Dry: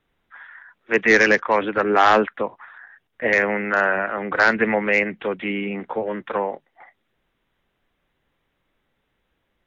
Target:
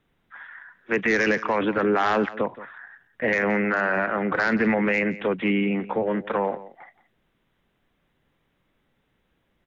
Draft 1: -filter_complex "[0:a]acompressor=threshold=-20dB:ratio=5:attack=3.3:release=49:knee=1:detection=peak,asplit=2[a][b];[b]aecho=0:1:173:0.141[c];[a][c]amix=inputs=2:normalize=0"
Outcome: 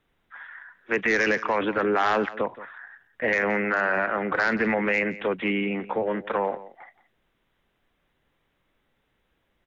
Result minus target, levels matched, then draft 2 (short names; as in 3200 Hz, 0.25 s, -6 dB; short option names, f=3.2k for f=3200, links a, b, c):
125 Hz band -3.5 dB
-filter_complex "[0:a]acompressor=threshold=-20dB:ratio=5:attack=3.3:release=49:knee=1:detection=peak,equalizer=f=170:w=0.72:g=5.5,asplit=2[a][b];[b]aecho=0:1:173:0.141[c];[a][c]amix=inputs=2:normalize=0"